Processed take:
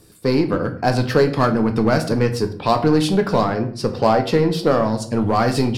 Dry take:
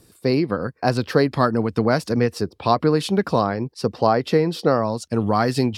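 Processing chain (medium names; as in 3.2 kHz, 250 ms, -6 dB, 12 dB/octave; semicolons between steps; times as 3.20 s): in parallel at -10 dB: wavefolder -18 dBFS; on the sum: simulated room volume 68 m³, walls mixed, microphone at 0.38 m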